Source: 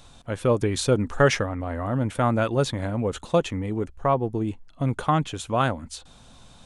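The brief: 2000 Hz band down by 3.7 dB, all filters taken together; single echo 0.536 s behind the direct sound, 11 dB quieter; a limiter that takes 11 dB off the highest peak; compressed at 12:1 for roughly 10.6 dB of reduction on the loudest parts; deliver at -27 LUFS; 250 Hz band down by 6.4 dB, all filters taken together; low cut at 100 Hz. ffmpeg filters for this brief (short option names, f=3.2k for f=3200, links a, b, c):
-af "highpass=100,equalizer=f=250:t=o:g=-8.5,equalizer=f=2k:t=o:g=-5,acompressor=threshold=-26dB:ratio=12,alimiter=limit=-23.5dB:level=0:latency=1,aecho=1:1:536:0.282,volume=8dB"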